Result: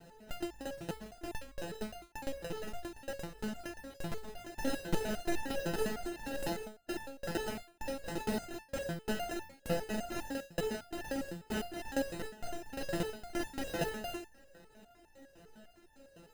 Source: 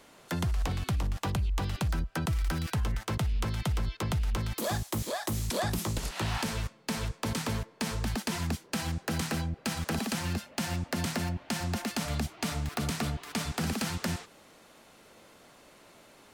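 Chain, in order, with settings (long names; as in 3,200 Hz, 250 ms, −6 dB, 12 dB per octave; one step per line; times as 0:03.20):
RIAA equalisation recording
decimation without filtering 39×
step-sequenced resonator 9.9 Hz 170–890 Hz
level +8 dB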